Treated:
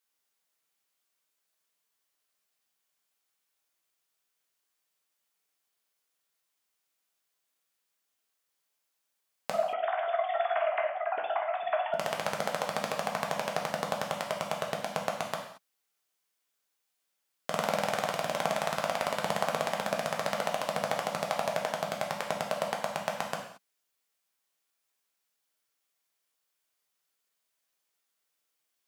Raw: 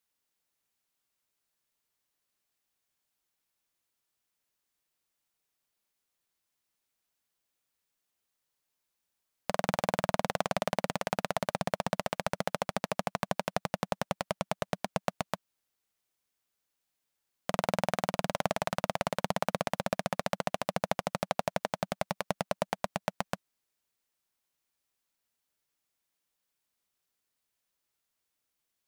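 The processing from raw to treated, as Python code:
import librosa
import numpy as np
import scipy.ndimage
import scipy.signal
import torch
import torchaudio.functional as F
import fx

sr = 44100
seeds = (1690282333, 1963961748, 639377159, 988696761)

y = fx.sine_speech(x, sr, at=(9.51, 11.94))
y = fx.highpass(y, sr, hz=350.0, slope=6)
y = fx.rev_gated(y, sr, seeds[0], gate_ms=250, shape='falling', drr_db=0.0)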